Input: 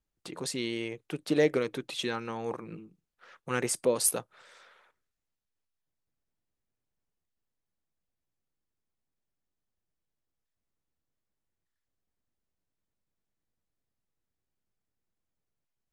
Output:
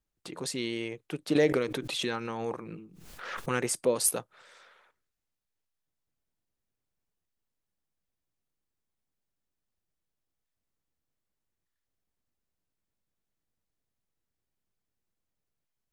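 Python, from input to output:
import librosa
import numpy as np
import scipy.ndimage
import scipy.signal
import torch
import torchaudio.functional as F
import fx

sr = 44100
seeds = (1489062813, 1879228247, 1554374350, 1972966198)

y = fx.pre_swell(x, sr, db_per_s=43.0, at=(1.35, 3.63))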